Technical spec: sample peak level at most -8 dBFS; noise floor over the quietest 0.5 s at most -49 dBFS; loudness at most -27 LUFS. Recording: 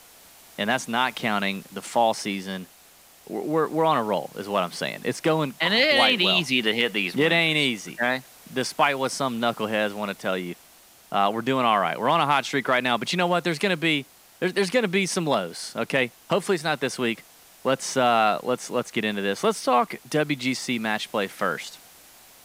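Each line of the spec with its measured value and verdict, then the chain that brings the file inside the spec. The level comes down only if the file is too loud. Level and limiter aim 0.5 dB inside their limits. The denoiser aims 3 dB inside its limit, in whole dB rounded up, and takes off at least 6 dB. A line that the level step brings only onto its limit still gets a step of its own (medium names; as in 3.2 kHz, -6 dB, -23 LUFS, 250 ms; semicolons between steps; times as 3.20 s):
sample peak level -5.5 dBFS: fail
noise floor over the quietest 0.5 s -53 dBFS: pass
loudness -24.0 LUFS: fail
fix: trim -3.5 dB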